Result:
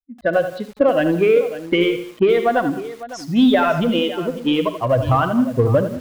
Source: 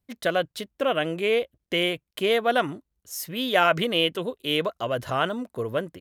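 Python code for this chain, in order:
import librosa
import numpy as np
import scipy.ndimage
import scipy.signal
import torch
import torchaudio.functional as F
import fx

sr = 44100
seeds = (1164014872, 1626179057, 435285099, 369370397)

p1 = fx.bin_expand(x, sr, power=2.0)
p2 = fx.recorder_agc(p1, sr, target_db=-13.0, rise_db_per_s=28.0, max_gain_db=30)
p3 = fx.env_lowpass(p2, sr, base_hz=940.0, full_db=-18.0)
p4 = fx.dynamic_eq(p3, sr, hz=280.0, q=5.8, threshold_db=-43.0, ratio=4.0, max_db=5)
p5 = fx.env_lowpass(p4, sr, base_hz=2900.0, full_db=-21.5)
p6 = np.clip(10.0 ** (27.5 / 20.0) * p5, -1.0, 1.0) / 10.0 ** (27.5 / 20.0)
p7 = p5 + F.gain(torch.from_numpy(p6), -4.0).numpy()
p8 = fx.spacing_loss(p7, sr, db_at_10k=28)
p9 = fx.echo_multitap(p8, sr, ms=(47, 59, 195, 553), db=(-18.5, -19.0, -20.0, -15.0))
p10 = fx.echo_crushed(p9, sr, ms=82, feedback_pct=35, bits=7, wet_db=-9.5)
y = F.gain(torch.from_numpy(p10), 5.5).numpy()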